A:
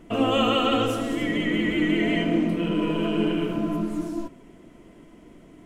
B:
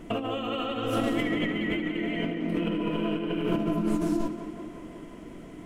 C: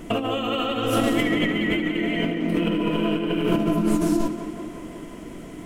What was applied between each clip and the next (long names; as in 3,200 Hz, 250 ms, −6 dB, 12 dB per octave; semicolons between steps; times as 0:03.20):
dynamic equaliser 7,200 Hz, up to −7 dB, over −51 dBFS, Q 1.1; compressor whose output falls as the input rises −29 dBFS, ratio −1; tape delay 180 ms, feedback 77%, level −10 dB, low-pass 4,100 Hz
high-shelf EQ 5,200 Hz +7.5 dB; level +5.5 dB